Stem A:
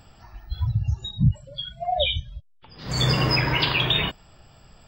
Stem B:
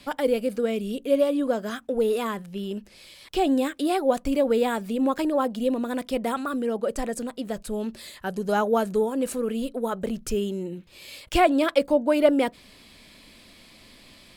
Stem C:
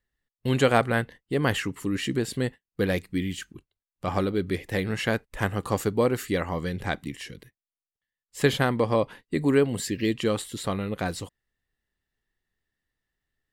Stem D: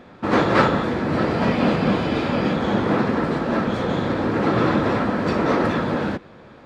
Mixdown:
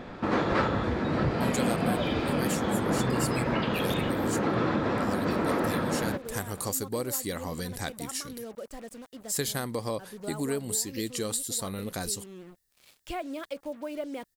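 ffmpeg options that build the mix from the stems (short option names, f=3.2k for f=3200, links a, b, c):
-filter_complex "[0:a]lowpass=2.5k,volume=0dB[a];[1:a]acrusher=bits=5:mix=0:aa=0.5,adelay=1750,volume=-13.5dB[b];[2:a]aexciter=amount=4.1:drive=8.6:freq=4.2k,adelay=950,volume=-2.5dB[c];[3:a]volume=3dB[d];[a][b][c][d]amix=inputs=4:normalize=0,acompressor=threshold=-33dB:ratio=2"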